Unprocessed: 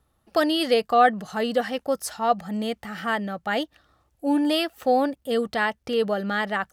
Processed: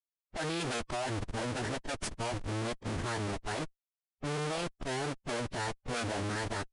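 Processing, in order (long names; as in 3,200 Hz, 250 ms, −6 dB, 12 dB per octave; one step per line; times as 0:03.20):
comparator with hysteresis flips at −31.5 dBFS
low-pass that shuts in the quiet parts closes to 1,600 Hz, open at −24.5 dBFS
phase-vocoder pitch shift with formants kept −11.5 semitones
level −9 dB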